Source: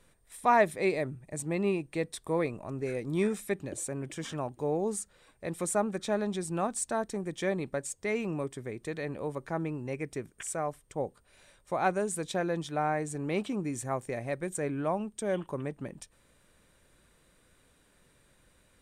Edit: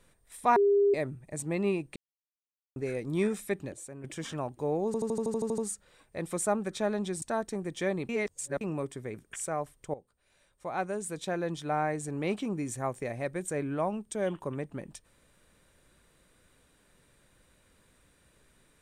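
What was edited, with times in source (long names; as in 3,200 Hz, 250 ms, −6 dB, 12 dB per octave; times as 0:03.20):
0:00.56–0:00.94: beep over 403 Hz −20 dBFS
0:01.96–0:02.76: silence
0:03.72–0:04.04: clip gain −8.5 dB
0:04.86: stutter 0.08 s, 10 plays
0:06.50–0:06.83: remove
0:07.70–0:08.22: reverse
0:08.75–0:10.21: remove
0:11.01–0:12.79: fade in, from −15 dB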